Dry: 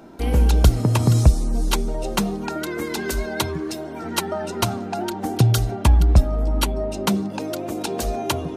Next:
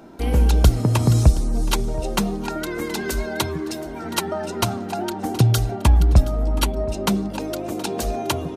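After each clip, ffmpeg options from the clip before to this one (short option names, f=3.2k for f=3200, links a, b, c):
-af "aecho=1:1:722:0.126"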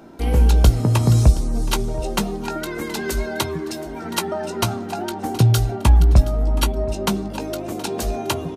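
-filter_complex "[0:a]asplit=2[a][b];[b]adelay=18,volume=-10dB[c];[a][c]amix=inputs=2:normalize=0"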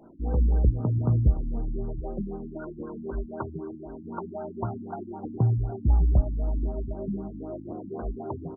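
-af "afftfilt=real='re*lt(b*sr/1024,310*pow(1600/310,0.5+0.5*sin(2*PI*3.9*pts/sr)))':imag='im*lt(b*sr/1024,310*pow(1600/310,0.5+0.5*sin(2*PI*3.9*pts/sr)))':win_size=1024:overlap=0.75,volume=-8dB"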